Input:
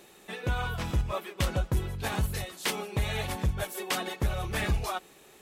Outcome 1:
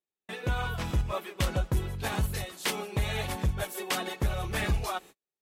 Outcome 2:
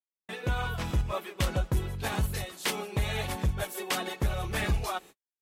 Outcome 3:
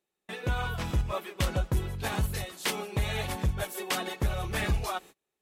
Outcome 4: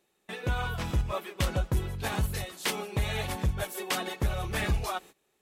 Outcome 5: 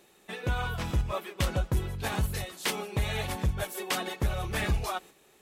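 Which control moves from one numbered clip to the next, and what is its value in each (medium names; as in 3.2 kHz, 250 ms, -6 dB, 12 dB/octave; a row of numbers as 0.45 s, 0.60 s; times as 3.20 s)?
gate, range: -44 dB, -57 dB, -31 dB, -19 dB, -6 dB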